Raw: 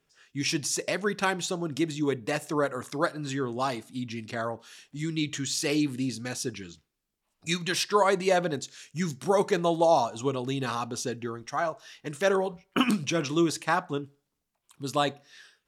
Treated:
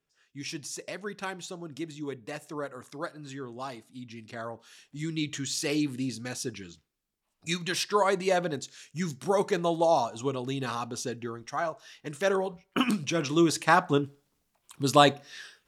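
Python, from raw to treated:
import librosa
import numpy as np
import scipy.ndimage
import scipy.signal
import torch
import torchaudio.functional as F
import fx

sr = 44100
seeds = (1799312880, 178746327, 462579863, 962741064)

y = fx.gain(x, sr, db=fx.line((4.0, -9.0), (5.03, -2.0), (13.05, -2.0), (13.99, 7.0)))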